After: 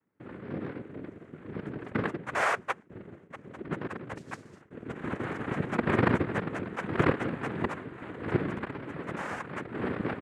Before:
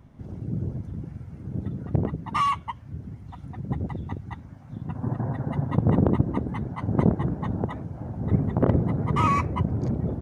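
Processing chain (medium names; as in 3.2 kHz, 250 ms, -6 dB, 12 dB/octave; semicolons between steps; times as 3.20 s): Chebyshev band-pass 200–980 Hz, order 2; gate with hold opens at -40 dBFS; comb 2.1 ms, depth 48%; 4.15–4.61 s: modulation noise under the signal 12 dB; 8.54–9.74 s: compression 6:1, threshold -34 dBFS, peak gain reduction 16 dB; noise-vocoded speech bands 3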